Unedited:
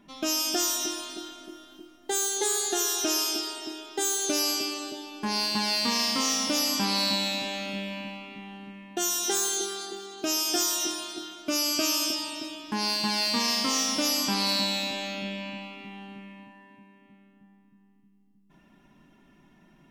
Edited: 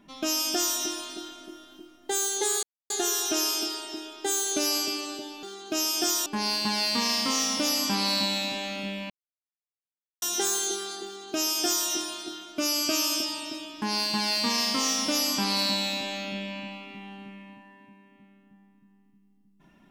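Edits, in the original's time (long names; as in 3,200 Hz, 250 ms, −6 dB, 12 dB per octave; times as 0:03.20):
0:02.63: splice in silence 0.27 s
0:08.00–0:09.12: silence
0:09.95–0:10.78: duplicate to 0:05.16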